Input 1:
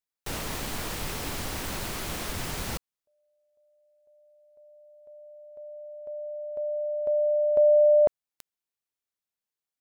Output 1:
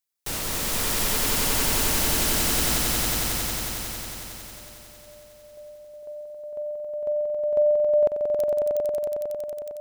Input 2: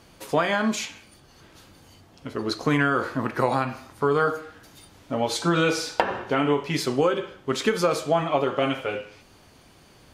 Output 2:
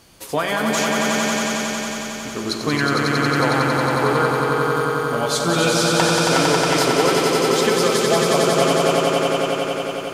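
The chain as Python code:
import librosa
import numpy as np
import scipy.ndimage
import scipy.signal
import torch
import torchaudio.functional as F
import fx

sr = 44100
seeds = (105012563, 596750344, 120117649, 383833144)

y = fx.high_shelf(x, sr, hz=4000.0, db=9.0)
y = fx.echo_swell(y, sr, ms=91, loudest=5, wet_db=-4.0)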